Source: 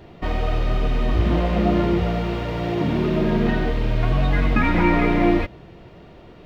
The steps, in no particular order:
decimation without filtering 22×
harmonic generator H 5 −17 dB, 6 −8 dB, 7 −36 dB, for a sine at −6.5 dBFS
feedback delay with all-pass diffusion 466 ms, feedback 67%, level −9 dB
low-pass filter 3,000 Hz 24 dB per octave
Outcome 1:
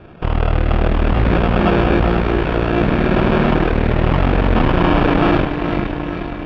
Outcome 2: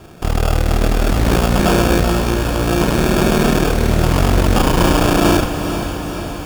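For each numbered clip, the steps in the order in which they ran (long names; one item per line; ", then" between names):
decimation without filtering, then feedback delay with all-pass diffusion, then harmonic generator, then low-pass filter
low-pass filter, then decimation without filtering, then harmonic generator, then feedback delay with all-pass diffusion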